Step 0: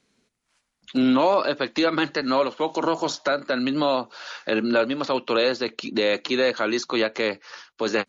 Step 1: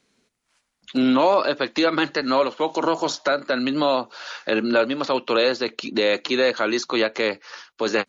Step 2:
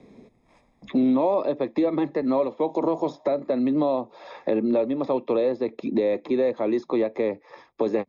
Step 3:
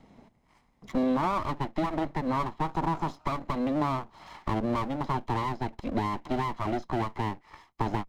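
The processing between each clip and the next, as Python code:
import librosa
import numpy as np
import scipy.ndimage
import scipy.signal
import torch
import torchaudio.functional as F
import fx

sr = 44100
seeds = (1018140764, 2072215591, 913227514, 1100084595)

y1 = fx.bass_treble(x, sr, bass_db=-3, treble_db=0)
y1 = F.gain(torch.from_numpy(y1), 2.0).numpy()
y2 = scipy.signal.lfilter(np.full(30, 1.0 / 30), 1.0, y1)
y2 = fx.band_squash(y2, sr, depth_pct=70)
y3 = fx.lower_of_two(y2, sr, delay_ms=0.98)
y3 = F.gain(torch.from_numpy(y3), -3.0).numpy()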